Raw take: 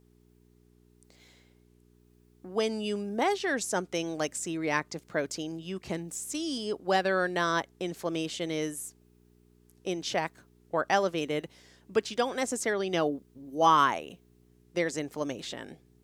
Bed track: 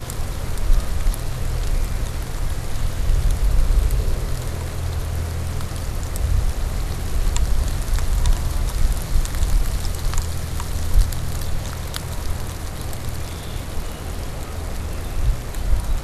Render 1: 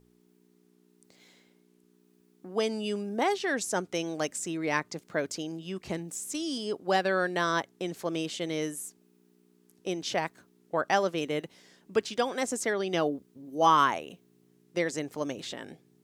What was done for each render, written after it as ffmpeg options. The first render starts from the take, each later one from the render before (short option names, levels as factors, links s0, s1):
-af "bandreject=f=60:t=h:w=4,bandreject=f=120:t=h:w=4"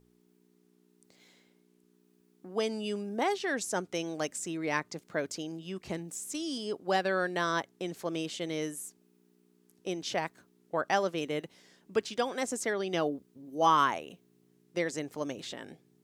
-af "volume=0.75"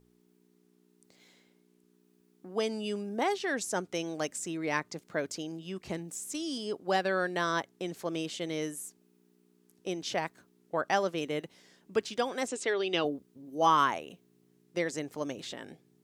-filter_complex "[0:a]asettb=1/sr,asplit=3[s0][s1][s2];[s0]atrim=end=12.484[s3];[s1]atrim=start=12.48:end=13.05,asetpts=PTS-STARTPTS,afade=t=in:d=0.004:c=qsin,afade=t=out:st=0.566:d=0.004:c=qsin,highpass=130,equalizer=f=210:t=q:w=4:g=-9,equalizer=f=410:t=q:w=4:g=4,equalizer=f=670:t=q:w=4:g=-4,equalizer=f=2700:t=q:w=4:g=9,equalizer=f=3800:t=q:w=4:g=7,equalizer=f=6100:t=q:w=4:g=-5,lowpass=f=8300:w=0.5412,lowpass=f=8300:w=1.3066[s4];[s2]atrim=start=13.046[s5];[s3][s4]acrossfade=d=0.004:c1=hsin:c2=qsin[s6];[s6][s5]acrossfade=d=0.004:c1=qsin:c2=hsin"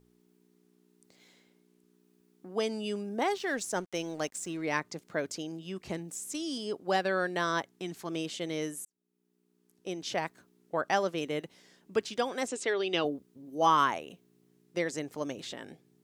-filter_complex "[0:a]asettb=1/sr,asplit=3[s0][s1][s2];[s0]atrim=end=3.264[s3];[s1]atrim=start=3.26:end=4.62,asetpts=PTS-STARTPTS,afade=t=in:d=0.004:c=qsin,afade=t=out:st=1.356:d=0.004:c=qsin,aeval=exprs='sgn(val(0))*max(abs(val(0))-0.00188,0)':c=same[s4];[s2]atrim=start=4.616[s5];[s3][s4]acrossfade=d=0.004:c1=hsin:c2=qsin[s6];[s6][s5]acrossfade=d=0.004:c1=qsin:c2=hsin,asettb=1/sr,asplit=3[s7][s8][s9];[s7]atrim=end=7.684[s10];[s8]atrim=start=7.68:end=8.1,asetpts=PTS-STARTPTS,afade=t=in:d=0.004:c=qsin,afade=t=out:st=0.416:d=0.004:c=qsin,equalizer=f=530:w=3.5:g=-12.5[s11];[s9]atrim=start=8.096[s12];[s10][s11]acrossfade=d=0.004:c1=hsin:c2=qsin[s13];[s13][s12]acrossfade=d=0.004:c1=qsin:c2=hsin,asplit=2[s14][s15];[s14]atrim=end=8.85,asetpts=PTS-STARTPTS,afade=t=out:st=8.846:d=0.004:c=hsin[s16];[s15]atrim=start=8.85,asetpts=PTS-STARTPTS,afade=t=in:d=1.36[s17];[s16][s17]concat=n=2:v=0:a=1"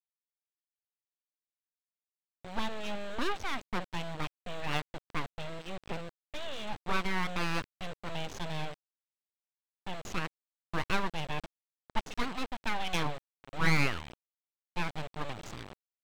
-af "aresample=8000,acrusher=bits=6:mix=0:aa=0.000001,aresample=44100,aeval=exprs='abs(val(0))':c=same"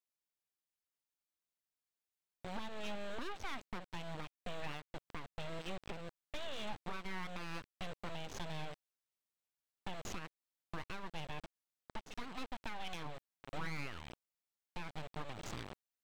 -af "acompressor=threshold=0.0141:ratio=4,alimiter=level_in=2:limit=0.0631:level=0:latency=1:release=269,volume=0.501"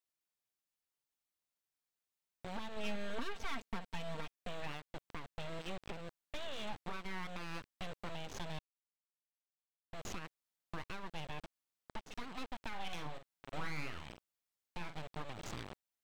-filter_complex "[0:a]asettb=1/sr,asplit=3[s0][s1][s2];[s0]atrim=end=2.764[s3];[s1]atrim=start=2.76:end=4.32,asetpts=PTS-STARTPTS,afade=t=in:d=0.004:c=qsin,afade=t=out:st=1.556:d=0.004:c=qsin,aecho=1:1:4.4:0.72,atrim=end_sample=68796[s4];[s2]atrim=start=4.316[s5];[s3][s4]acrossfade=d=0.004:c1=hsin:c2=qsin[s6];[s6][s5]acrossfade=d=0.004:c1=qsin:c2=hsin,asettb=1/sr,asplit=3[s7][s8][s9];[s7]atrim=end=12.684[s10];[s8]atrim=start=12.68:end=14.97,asetpts=PTS-STARTPTS,afade=t=in:d=0.004:c=qsin,afade=t=out:st=2.286:d=0.004:c=qsin,asplit=2[s11][s12];[s12]adelay=46,volume=0.398[s13];[s11][s13]amix=inputs=2:normalize=0,atrim=end_sample=100989[s14];[s9]atrim=start=14.966[s15];[s10][s14]acrossfade=d=0.004:c1=hsin:c2=qsin[s16];[s16][s15]acrossfade=d=0.004:c1=qsin:c2=hsin,asplit=3[s17][s18][s19];[s17]atrim=end=8.59,asetpts=PTS-STARTPTS,afade=t=out:st=8.586:d=0.004:c=hsin[s20];[s18]atrim=start=8.59:end=9.93,asetpts=PTS-STARTPTS,volume=0[s21];[s19]atrim=start=9.93,asetpts=PTS-STARTPTS,afade=t=in:d=0.004:c=hsin[s22];[s20][s21][s22]concat=n=3:v=0:a=1"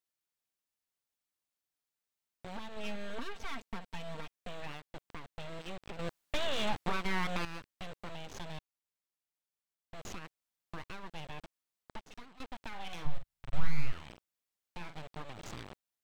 -filter_complex "[0:a]asplit=3[s0][s1][s2];[s0]afade=t=out:st=13.05:d=0.02[s3];[s1]asubboost=boost=11.5:cutoff=93,afade=t=in:st=13.05:d=0.02,afade=t=out:st=13.91:d=0.02[s4];[s2]afade=t=in:st=13.91:d=0.02[s5];[s3][s4][s5]amix=inputs=3:normalize=0,asplit=4[s6][s7][s8][s9];[s6]atrim=end=5.992[s10];[s7]atrim=start=5.988:end=7.452,asetpts=PTS-STARTPTS,volume=3.16[s11];[s8]atrim=start=7.448:end=12.4,asetpts=PTS-STARTPTS,afade=t=out:st=4.522:d=0.43:silence=0.141254[s12];[s9]atrim=start=12.4,asetpts=PTS-STARTPTS,afade=t=in:d=0.004:c=hsin:silence=0.141254[s13];[s10][s11]acrossfade=d=0.004:c1=hsin:c2=hsin[s14];[s12][s13]concat=n=2:v=0:a=1[s15];[s14][s15]acrossfade=d=0.004:c1=hsin:c2=hsin"